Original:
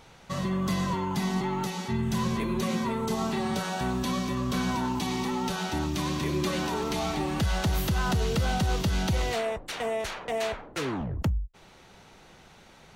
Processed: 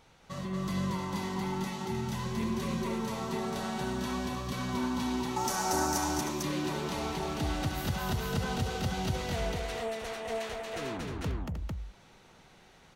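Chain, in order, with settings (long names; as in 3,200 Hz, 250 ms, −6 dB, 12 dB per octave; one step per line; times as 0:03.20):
0:05.36–0:05.98: drawn EQ curve 220 Hz 0 dB, 820 Hz +10 dB, 1,700 Hz +6 dB, 3,400 Hz −6 dB, 5,700 Hz +15 dB
on a send: multi-tap delay 64/232/309/449 ms −11.5/−3/−9.5/−3.5 dB
on the sum: level −8 dB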